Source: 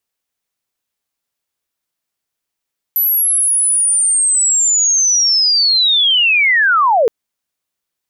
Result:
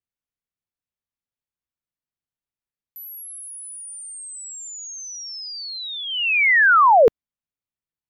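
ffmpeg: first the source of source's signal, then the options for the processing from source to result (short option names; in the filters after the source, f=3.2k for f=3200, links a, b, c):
-f lavfi -i "aevalsrc='pow(10,(-11+2.5*t/4.12)/20)*sin(2*PI*(12000*t-11580*t*t/(2*4.12)))':d=4.12:s=44100"
-af "bass=f=250:g=11,treble=f=4k:g=-8,agate=range=-15dB:threshold=-13dB:ratio=16:detection=peak"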